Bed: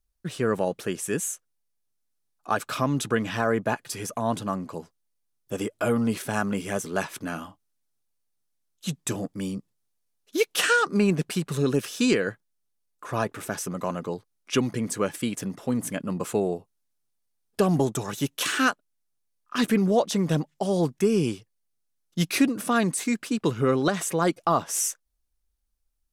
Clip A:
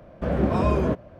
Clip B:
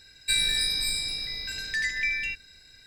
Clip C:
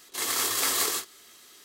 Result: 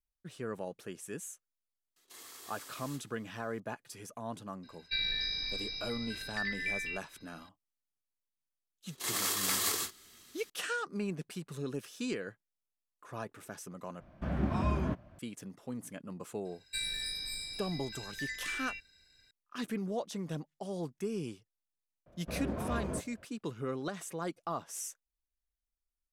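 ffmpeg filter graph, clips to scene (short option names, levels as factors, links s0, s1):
-filter_complex "[3:a]asplit=2[s0][s1];[2:a]asplit=2[s2][s3];[1:a]asplit=2[s4][s5];[0:a]volume=0.188[s6];[s0]alimiter=limit=0.0631:level=0:latency=1:release=11[s7];[s2]aresample=11025,aresample=44100[s8];[s1]asubboost=boost=9:cutoff=230[s9];[s4]equalizer=f=480:t=o:w=0.66:g=-13[s10];[s5]asoftclip=type=hard:threshold=0.126[s11];[s6]asplit=2[s12][s13];[s12]atrim=end=14.004[s14];[s10]atrim=end=1.19,asetpts=PTS-STARTPTS,volume=0.422[s15];[s13]atrim=start=15.186[s16];[s7]atrim=end=1.64,asetpts=PTS-STARTPTS,volume=0.133,afade=t=in:d=0.004:c=hsin,afade=t=out:st=1.636:d=0.004:c=hsin,adelay=1960[s17];[s8]atrim=end=2.86,asetpts=PTS-STARTPTS,volume=0.398,afade=t=in:d=0.004:c=hsin,afade=t=out:st=2.856:d=0.004:c=hsin,adelay=4630[s18];[s9]atrim=end=1.64,asetpts=PTS-STARTPTS,volume=0.531,afade=t=in:d=0.004:c=hsin,afade=t=out:st=1.636:d=0.004:c=hsin,adelay=8860[s19];[s3]atrim=end=2.86,asetpts=PTS-STARTPTS,volume=0.251,afade=t=in:d=0.004:c=hsin,afade=t=out:st=2.856:d=0.004:c=hsin,adelay=16450[s20];[s11]atrim=end=1.19,asetpts=PTS-STARTPTS,volume=0.211,afade=t=in:d=0.004:c=hsin,afade=t=out:st=1.186:d=0.004:c=hsin,adelay=22060[s21];[s14][s15]acrossfade=d=0.004:c1=hsin:c2=hsin[s22];[s22][s16]acrossfade=d=0.004:c1=hsin:c2=hsin[s23];[s23][s17][s18][s19][s20][s21]amix=inputs=6:normalize=0"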